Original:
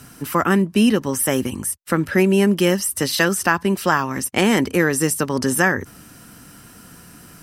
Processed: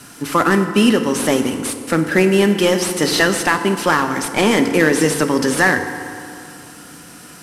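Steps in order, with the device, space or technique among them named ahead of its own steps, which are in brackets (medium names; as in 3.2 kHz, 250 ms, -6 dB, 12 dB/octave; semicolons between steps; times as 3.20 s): early wireless headset (high-pass 220 Hz 6 dB/octave; CVSD coder 64 kbps); FDN reverb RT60 2.6 s, high-frequency decay 0.55×, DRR 6.5 dB; trim +5 dB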